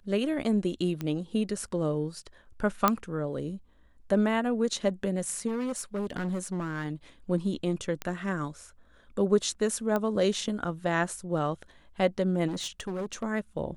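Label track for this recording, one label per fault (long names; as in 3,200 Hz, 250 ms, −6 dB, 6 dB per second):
1.010000	1.010000	click −20 dBFS
2.880000	2.880000	click −7 dBFS
5.470000	6.850000	clipping −27.5 dBFS
8.020000	8.020000	click −17 dBFS
9.960000	9.960000	click −16 dBFS
12.470000	13.240000	clipping −29.5 dBFS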